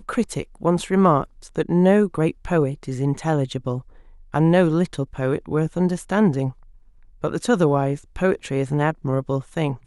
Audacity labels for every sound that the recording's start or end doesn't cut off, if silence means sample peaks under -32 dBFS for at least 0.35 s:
4.340000	6.510000	sound